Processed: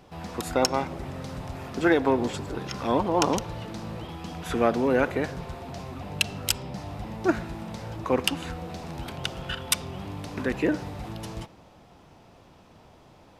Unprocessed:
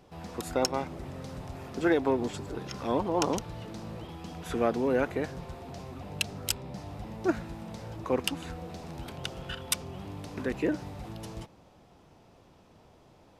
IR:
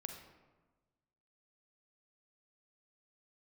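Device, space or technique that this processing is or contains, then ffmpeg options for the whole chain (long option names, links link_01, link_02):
filtered reverb send: -filter_complex "[0:a]asplit=2[link_01][link_02];[link_02]highpass=frequency=400:width=0.5412,highpass=frequency=400:width=1.3066,lowpass=5100[link_03];[1:a]atrim=start_sample=2205[link_04];[link_03][link_04]afir=irnorm=-1:irlink=0,volume=-8.5dB[link_05];[link_01][link_05]amix=inputs=2:normalize=0,volume=4.5dB"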